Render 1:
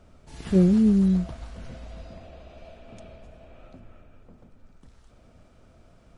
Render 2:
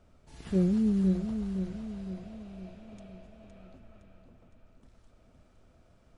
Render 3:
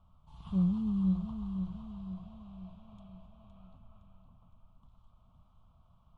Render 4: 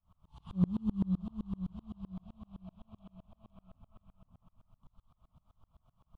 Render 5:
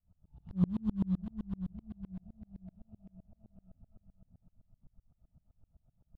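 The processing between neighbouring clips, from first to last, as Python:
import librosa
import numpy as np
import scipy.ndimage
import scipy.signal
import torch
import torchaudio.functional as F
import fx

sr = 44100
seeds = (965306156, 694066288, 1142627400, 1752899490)

y1 = fx.echo_feedback(x, sr, ms=513, feedback_pct=50, wet_db=-7.5)
y1 = y1 * 10.0 ** (-7.5 / 20.0)
y2 = fx.curve_eq(y1, sr, hz=(180.0, 340.0, 480.0, 1100.0, 1800.0, 3200.0, 5300.0), db=(0, -21, -18, 8, -27, -2, -18))
y2 = y2 * 10.0 ** (-1.0 / 20.0)
y3 = fx.tremolo_decay(y2, sr, direction='swelling', hz=7.8, depth_db=32)
y3 = y3 * 10.0 ** (6.0 / 20.0)
y4 = fx.wiener(y3, sr, points=41)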